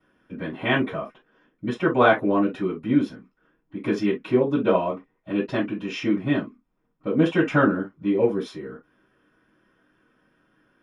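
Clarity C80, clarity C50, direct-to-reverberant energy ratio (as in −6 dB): 60.0 dB, 12.5 dB, −13.0 dB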